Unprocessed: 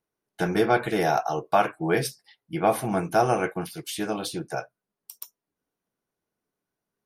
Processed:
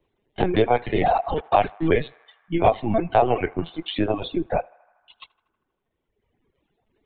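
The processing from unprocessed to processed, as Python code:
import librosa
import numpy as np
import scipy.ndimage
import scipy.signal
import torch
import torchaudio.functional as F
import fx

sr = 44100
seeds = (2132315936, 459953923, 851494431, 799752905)

p1 = fx.spec_quant(x, sr, step_db=15)
p2 = fx.peak_eq(p1, sr, hz=1400.0, db=-13.0, octaves=0.34)
p3 = fx.rider(p2, sr, range_db=3, speed_s=2.0)
p4 = p2 + F.gain(torch.from_numpy(p3), 0.5).numpy()
p5 = fx.sample_gate(p4, sr, floor_db=-27.5, at=(1.36, 1.88))
p6 = fx.notch_comb(p5, sr, f0_hz=970.0, at=(4.0, 4.47), fade=0.02)
p7 = fx.lpc_vocoder(p6, sr, seeds[0], excitation='pitch_kept', order=16)
p8 = p7 + fx.echo_banded(p7, sr, ms=79, feedback_pct=74, hz=1300.0, wet_db=-13.5, dry=0)
p9 = fx.dereverb_blind(p8, sr, rt60_s=1.7)
y = fx.band_squash(p9, sr, depth_pct=40)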